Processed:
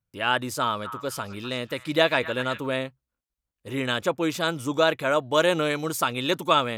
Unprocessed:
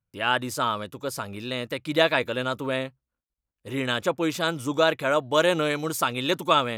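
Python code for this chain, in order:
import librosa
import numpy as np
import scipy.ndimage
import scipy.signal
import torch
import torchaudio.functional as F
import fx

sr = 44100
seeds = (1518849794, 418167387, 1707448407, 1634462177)

y = fx.echo_stepped(x, sr, ms=252, hz=1400.0, octaves=0.7, feedback_pct=70, wet_db=-9.5, at=(0.49, 2.6))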